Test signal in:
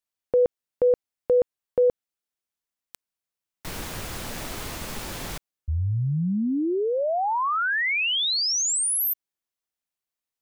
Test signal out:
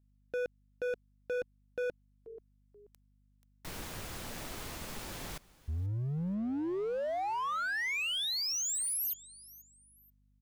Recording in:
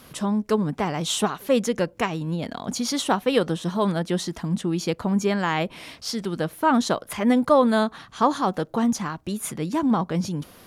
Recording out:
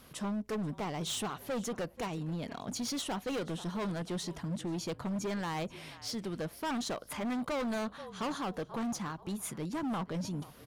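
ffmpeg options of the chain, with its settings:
-filter_complex "[0:a]asplit=3[s0][s1][s2];[s1]adelay=483,afreqshift=-41,volume=0.0841[s3];[s2]adelay=966,afreqshift=-82,volume=0.0279[s4];[s0][s3][s4]amix=inputs=3:normalize=0,volume=15,asoftclip=hard,volume=0.0668,aeval=exprs='val(0)+0.00112*(sin(2*PI*50*n/s)+sin(2*PI*2*50*n/s)/2+sin(2*PI*3*50*n/s)/3+sin(2*PI*4*50*n/s)/4+sin(2*PI*5*50*n/s)/5)':c=same,volume=0.376"

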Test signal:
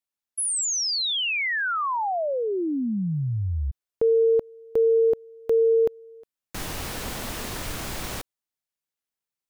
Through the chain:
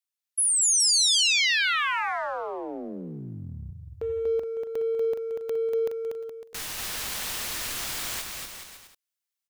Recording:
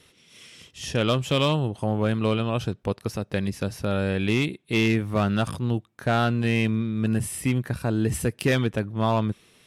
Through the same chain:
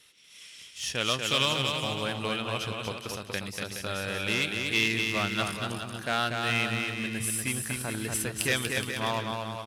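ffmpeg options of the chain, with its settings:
-filter_complex "[0:a]tiltshelf=f=970:g=-8,aecho=1:1:240|420|555|656.2|732.2:0.631|0.398|0.251|0.158|0.1,asplit=2[s0][s1];[s1]aeval=exprs='sgn(val(0))*max(abs(val(0))-0.0266,0)':c=same,volume=0.335[s2];[s0][s2]amix=inputs=2:normalize=0,volume=0.447"

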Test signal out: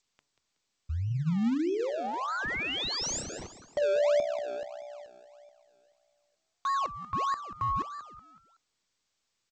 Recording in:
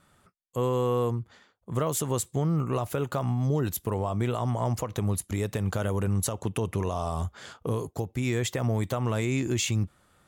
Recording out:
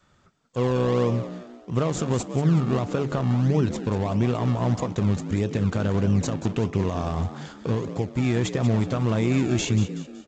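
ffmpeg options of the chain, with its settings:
-filter_complex "[0:a]bandreject=f=143.4:t=h:w=4,bandreject=f=286.8:t=h:w=4,bandreject=f=430.2:t=h:w=4,bandreject=f=573.6:t=h:w=4,bandreject=f=717:t=h:w=4,bandreject=f=860.4:t=h:w=4,bandreject=f=1003.8:t=h:w=4,adynamicequalizer=threshold=0.01:dfrequency=210:dqfactor=1.2:tfrequency=210:tqfactor=1.2:attack=5:release=100:ratio=0.375:range=2.5:mode=boostabove:tftype=bell,asplit=5[s0][s1][s2][s3][s4];[s1]adelay=186,afreqshift=62,volume=0.251[s5];[s2]adelay=372,afreqshift=124,volume=0.1[s6];[s3]adelay=558,afreqshift=186,volume=0.0403[s7];[s4]adelay=744,afreqshift=248,volume=0.016[s8];[s0][s5][s6][s7][s8]amix=inputs=5:normalize=0,asplit=2[s9][s10];[s10]acrusher=samples=30:mix=1:aa=0.000001:lfo=1:lforange=30:lforate=1.6,volume=0.398[s11];[s9][s11]amix=inputs=2:normalize=0" -ar 16000 -c:a g722

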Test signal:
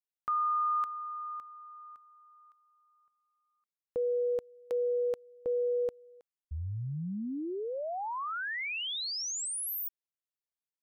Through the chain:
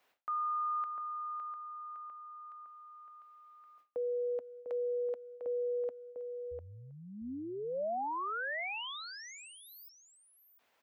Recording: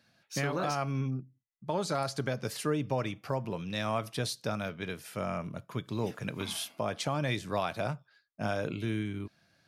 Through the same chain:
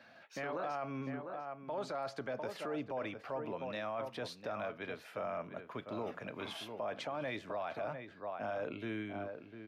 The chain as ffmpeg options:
-filter_complex "[0:a]equalizer=f=100:t=o:w=0.67:g=3,equalizer=f=250:t=o:w=0.67:g=8,equalizer=f=630:t=o:w=0.67:g=4,equalizer=f=10000:t=o:w=0.67:g=-5,asplit=2[s0][s1];[s1]adelay=699.7,volume=0.316,highshelf=f=4000:g=-15.7[s2];[s0][s2]amix=inputs=2:normalize=0,areverse,acompressor=mode=upward:threshold=0.0141:ratio=2.5:attack=0.13:release=85:knee=2.83:detection=peak,areverse,acrossover=split=410 3000:gain=0.158 1 0.178[s3][s4][s5];[s3][s4][s5]amix=inputs=3:normalize=0,alimiter=level_in=1.88:limit=0.0631:level=0:latency=1:release=13,volume=0.531,volume=0.841"

